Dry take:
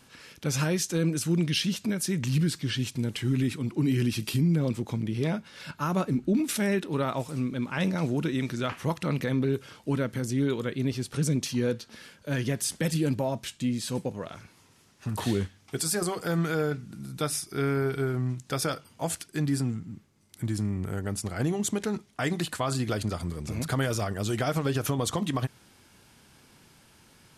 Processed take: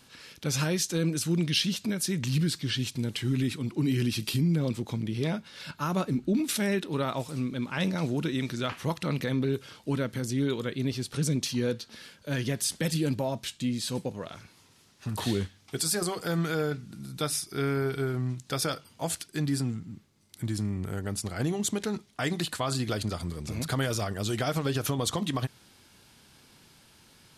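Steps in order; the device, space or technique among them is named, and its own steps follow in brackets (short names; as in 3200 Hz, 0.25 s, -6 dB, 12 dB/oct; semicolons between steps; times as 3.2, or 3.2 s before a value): presence and air boost (bell 4000 Hz +5 dB 0.85 oct; high shelf 11000 Hz +3.5 dB); gain -1.5 dB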